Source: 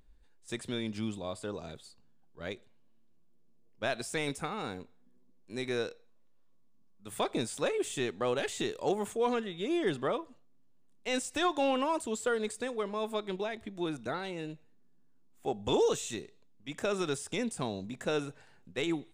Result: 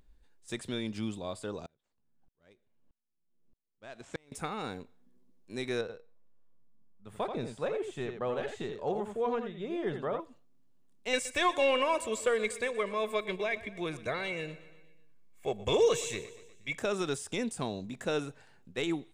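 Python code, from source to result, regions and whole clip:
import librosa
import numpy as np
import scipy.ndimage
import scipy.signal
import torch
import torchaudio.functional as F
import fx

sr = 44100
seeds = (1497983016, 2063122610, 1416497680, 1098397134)

y = fx.chain(x, sr, fx.median_filter(points=9),
    fx.lowpass(hz=8400.0, slope=24),
    fx.tremolo_decay(direction='swelling', hz=1.6, depth_db=34), at=(1.66, 4.32))
y = fx.chain(y, sr, fx.lowpass(hz=1100.0, slope=6),
    fx.peak_eq(hz=300.0, db=-8.0, octaves=0.54),
    fx.echo_single(ms=84, db=-7.0), at=(5.81, 10.2))
y = fx.chain(y, sr, fx.peak_eq(hz=2200.0, db=12.5, octaves=0.39),
    fx.comb(ms=1.8, depth=0.54),
    fx.echo_feedback(ms=120, feedback_pct=57, wet_db=-17), at=(11.13, 16.78))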